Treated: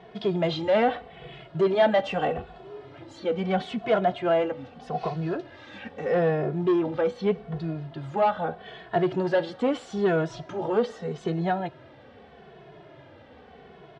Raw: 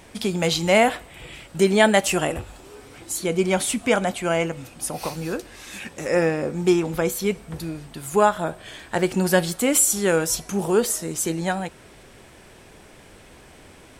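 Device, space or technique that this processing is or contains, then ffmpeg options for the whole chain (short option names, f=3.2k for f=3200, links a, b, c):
barber-pole flanger into a guitar amplifier: -filter_complex "[0:a]asplit=2[a][b];[b]adelay=2.3,afreqshift=-0.8[c];[a][c]amix=inputs=2:normalize=1,asoftclip=type=tanh:threshold=-19.5dB,highpass=85,equalizer=f=140:t=q:w=4:g=6,equalizer=f=430:t=q:w=4:g=5,equalizer=f=690:t=q:w=4:g=8,equalizer=f=2.4k:t=q:w=4:g=-7,lowpass=f=3.5k:w=0.5412,lowpass=f=3.5k:w=1.3066"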